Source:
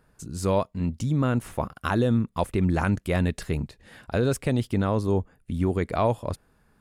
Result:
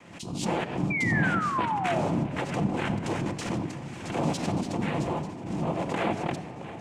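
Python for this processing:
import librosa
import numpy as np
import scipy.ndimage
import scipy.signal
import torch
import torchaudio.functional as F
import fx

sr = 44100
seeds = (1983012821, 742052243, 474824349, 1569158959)

p1 = fx.over_compress(x, sr, threshold_db=-28.0, ratio=-0.5)
p2 = x + (p1 * librosa.db_to_amplitude(-1.5))
p3 = fx.echo_swing(p2, sr, ms=891, ratio=3, feedback_pct=60, wet_db=-15.5)
p4 = fx.noise_vocoder(p3, sr, seeds[0], bands=4)
p5 = fx.spec_paint(p4, sr, seeds[1], shape='fall', start_s=0.9, length_s=1.12, low_hz=600.0, high_hz=2400.0, level_db=-22.0)
p6 = fx.room_shoebox(p5, sr, seeds[2], volume_m3=2100.0, walls='mixed', distance_m=0.81)
p7 = fx.pre_swell(p6, sr, db_per_s=72.0)
y = p7 * librosa.db_to_amplitude(-7.5)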